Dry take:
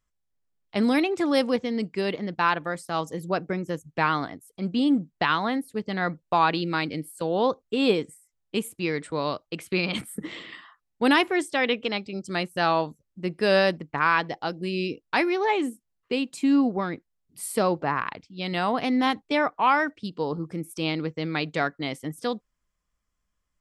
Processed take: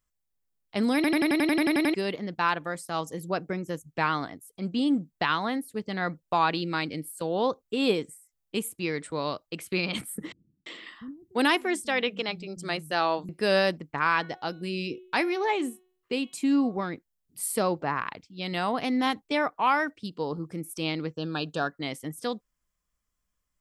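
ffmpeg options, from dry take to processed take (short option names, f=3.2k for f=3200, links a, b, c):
-filter_complex "[0:a]asettb=1/sr,asplit=3[a][b][c];[a]atrim=end=10.324[d];[b]atrim=start=10.32:end=13.29,asetpts=PTS-STARTPTS,afade=t=in:d=0.004:c=qsin,afade=t=out:st=2.966:d=0.004:c=qsin,acrossover=split=180[e][f];[f]adelay=340[g];[e][g]amix=inputs=2:normalize=0,atrim=end_sample=130977[h];[c]atrim=start=13.286[i];[d][h]acrossfade=d=0.004:c1=hsin:c2=qsin[j];[j][i]acrossfade=d=0.004:c1=qsin:c2=hsin,asettb=1/sr,asplit=3[k][l][m];[k]atrim=end=13.924[n];[l]atrim=start=13.92:end=16.83,asetpts=PTS-STARTPTS,afade=t=in:d=0.004:c=qsin,afade=t=out:st=2.906:d=0.004:c=qsin,bandreject=f=367.7:t=h:w=4,bandreject=f=735.4:t=h:w=4,bandreject=f=1.1031k:t=h:w=4,bandreject=f=1.4708k:t=h:w=4,bandreject=f=1.8385k:t=h:w=4,bandreject=f=2.2062k:t=h:w=4,bandreject=f=2.5739k:t=h:w=4,bandreject=f=2.9416k:t=h:w=4,bandreject=f=3.3093k:t=h:w=4,bandreject=f=3.677k:t=h:w=4,bandreject=f=4.0447k:t=h:w=4[o];[m]atrim=start=16.826[p];[n][o]acrossfade=d=0.004:c1=hsin:c2=qsin[q];[q][p]acrossfade=d=0.004:c1=qsin:c2=hsin,asettb=1/sr,asplit=3[r][s][t];[r]atrim=end=21.144[u];[s]atrim=start=21.14:end=21.72,asetpts=PTS-STARTPTS,afade=t=in:d=0.004:c=qsin,afade=t=out:st=0.576:d=0.004:c=qsin,asuperstop=centerf=2100:order=8:qfactor=2.8[v];[t]atrim=start=21.716[w];[u][v]acrossfade=d=0.004:c1=hsin:c2=qsin[x];[x][w]acrossfade=d=0.004:c1=qsin:c2=hsin,asplit=12[y][z][aa][ab][ac][ad][ae][af][ag][ah][ai][aj];[y]atrim=end=1.042[ak];[z]atrim=start=0.948:end=1.042[al];[aa]atrim=start=0.948:end=1.042[am];[ab]atrim=start=0.948:end=1.042[an];[ac]atrim=start=0.948:end=1.042[ao];[ad]atrim=start=0.948:end=1.042[ap];[ae]atrim=start=0.948:end=1.042[aq];[af]atrim=start=0.948:end=1.042[ar];[ag]atrim=start=0.948:end=1.042[as];[ah]atrim=start=0.948:end=1.042[at];[ai]atrim=start=0.948:end=1.042[au];[aj]atrim=start=1.938[av];[ak][al]acrossfade=d=0.004:c1=hsin:c2=hsin[aw];[aw][am]acrossfade=d=0.004:c1=hsin:c2=hsin[ax];[ax][an]acrossfade=d=0.004:c1=hsin:c2=hsin[ay];[ay][ao]acrossfade=d=0.004:c1=hsin:c2=hsin[az];[az][ap]acrossfade=d=0.004:c1=hsin:c2=hsin[ba];[ba][aq]acrossfade=d=0.004:c1=hsin:c2=hsin[bb];[bb][ar]acrossfade=d=0.004:c1=hsin:c2=hsin[bc];[bc][as]acrossfade=d=0.004:c1=hsin:c2=hsin[bd];[bd][at]acrossfade=d=0.004:c1=hsin:c2=hsin[be];[be][au]acrossfade=d=0.004:c1=hsin:c2=hsin[bf];[bf][av]acrossfade=d=0.004:c1=hsin:c2=hsin,highshelf=f=8.3k:g=10,volume=-3dB"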